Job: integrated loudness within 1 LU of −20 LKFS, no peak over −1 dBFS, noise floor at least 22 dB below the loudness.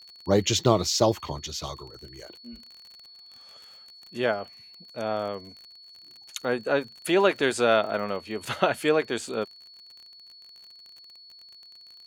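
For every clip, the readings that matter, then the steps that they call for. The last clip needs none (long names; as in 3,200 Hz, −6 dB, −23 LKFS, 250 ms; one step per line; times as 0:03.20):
crackle rate 37 per second; interfering tone 4,400 Hz; level of the tone −47 dBFS; integrated loudness −26.0 LKFS; sample peak −5.5 dBFS; target loudness −20.0 LKFS
→ click removal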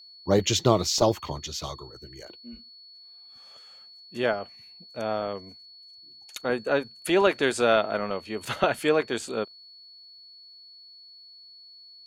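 crackle rate 0.083 per second; interfering tone 4,400 Hz; level of the tone −47 dBFS
→ notch filter 4,400 Hz, Q 30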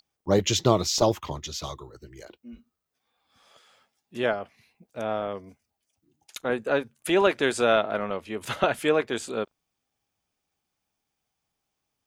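interfering tone none found; integrated loudness −26.0 LKFS; sample peak −5.5 dBFS; target loudness −20.0 LKFS
→ level +6 dB
brickwall limiter −1 dBFS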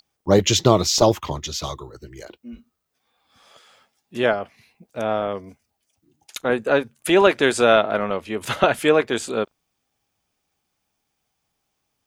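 integrated loudness −20.0 LKFS; sample peak −1.0 dBFS; background noise floor −76 dBFS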